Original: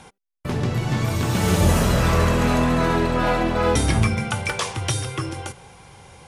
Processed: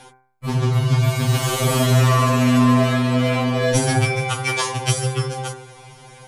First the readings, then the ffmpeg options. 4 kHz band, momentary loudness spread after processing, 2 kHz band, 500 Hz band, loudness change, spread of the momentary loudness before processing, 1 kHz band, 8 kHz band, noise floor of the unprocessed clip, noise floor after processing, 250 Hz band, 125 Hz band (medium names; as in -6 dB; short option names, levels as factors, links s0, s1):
+3.5 dB, 10 LU, +1.5 dB, +1.0 dB, +2.5 dB, 10 LU, +1.5 dB, +3.5 dB, -66 dBFS, -48 dBFS, +2.5 dB, +4.0 dB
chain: -af "bandreject=f=64.68:t=h:w=4,bandreject=f=129.36:t=h:w=4,bandreject=f=194.04:t=h:w=4,bandreject=f=258.72:t=h:w=4,bandreject=f=323.4:t=h:w=4,bandreject=f=388.08:t=h:w=4,bandreject=f=452.76:t=h:w=4,bandreject=f=517.44:t=h:w=4,bandreject=f=582.12:t=h:w=4,bandreject=f=646.8:t=h:w=4,bandreject=f=711.48:t=h:w=4,bandreject=f=776.16:t=h:w=4,bandreject=f=840.84:t=h:w=4,bandreject=f=905.52:t=h:w=4,bandreject=f=970.2:t=h:w=4,bandreject=f=1034.88:t=h:w=4,bandreject=f=1099.56:t=h:w=4,bandreject=f=1164.24:t=h:w=4,bandreject=f=1228.92:t=h:w=4,bandreject=f=1293.6:t=h:w=4,bandreject=f=1358.28:t=h:w=4,bandreject=f=1422.96:t=h:w=4,bandreject=f=1487.64:t=h:w=4,bandreject=f=1552.32:t=h:w=4,bandreject=f=1617:t=h:w=4,bandreject=f=1681.68:t=h:w=4,bandreject=f=1746.36:t=h:w=4,bandreject=f=1811.04:t=h:w=4,bandreject=f=1875.72:t=h:w=4,bandreject=f=1940.4:t=h:w=4,bandreject=f=2005.08:t=h:w=4,bandreject=f=2069.76:t=h:w=4,bandreject=f=2134.44:t=h:w=4,bandreject=f=2199.12:t=h:w=4,bandreject=f=2263.8:t=h:w=4,bandreject=f=2328.48:t=h:w=4,afftfilt=real='re*2.45*eq(mod(b,6),0)':imag='im*2.45*eq(mod(b,6),0)':win_size=2048:overlap=0.75,volume=2"